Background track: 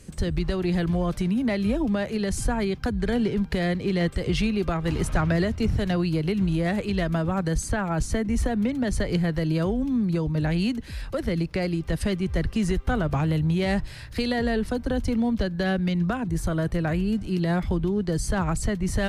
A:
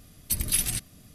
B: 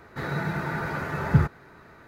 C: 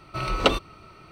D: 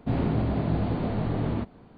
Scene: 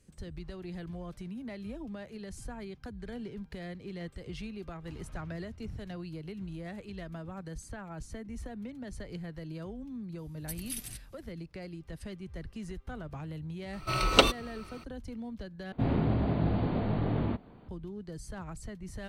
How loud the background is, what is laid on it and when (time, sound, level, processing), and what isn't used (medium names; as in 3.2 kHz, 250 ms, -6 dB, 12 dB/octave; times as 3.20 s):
background track -17 dB
10.18 s: add A -14.5 dB
13.73 s: add C -2 dB + treble shelf 4.3 kHz +9.5 dB
15.72 s: replace with D -2.5 dB
not used: B